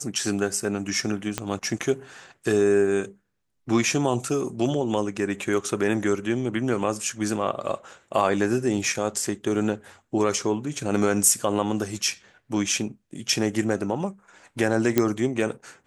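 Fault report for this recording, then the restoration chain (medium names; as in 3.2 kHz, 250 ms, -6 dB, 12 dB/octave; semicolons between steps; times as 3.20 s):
1.38 s: pop -10 dBFS
14.98 s: pop -5 dBFS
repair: de-click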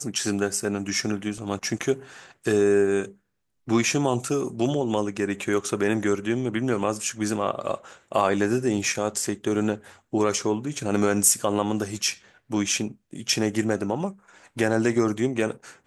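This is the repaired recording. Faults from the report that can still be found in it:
1.38 s: pop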